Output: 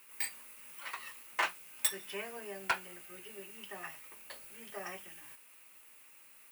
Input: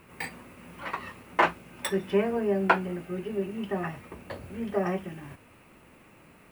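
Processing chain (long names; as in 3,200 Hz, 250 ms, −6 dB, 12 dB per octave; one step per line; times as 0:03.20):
first difference
in parallel at −5 dB: wrap-around overflow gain 22.5 dB
on the sum: level +1.5 dB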